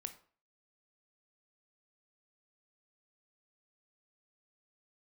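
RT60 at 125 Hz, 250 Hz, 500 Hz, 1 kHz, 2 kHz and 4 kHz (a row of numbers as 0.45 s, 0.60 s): 0.40 s, 0.40 s, 0.45 s, 0.45 s, 0.40 s, 0.35 s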